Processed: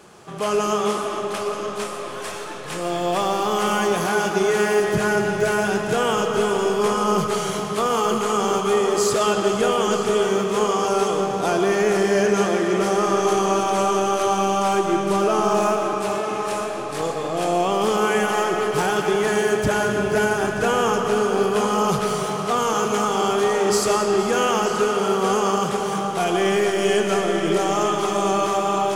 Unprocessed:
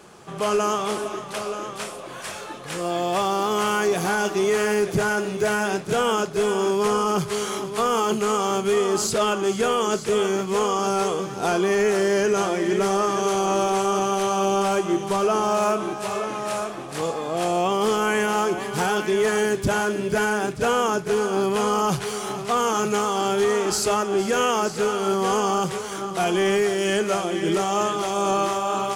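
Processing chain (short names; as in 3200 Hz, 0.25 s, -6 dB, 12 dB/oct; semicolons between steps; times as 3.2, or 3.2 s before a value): digital reverb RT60 4.3 s, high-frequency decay 0.6×, pre-delay 75 ms, DRR 2.5 dB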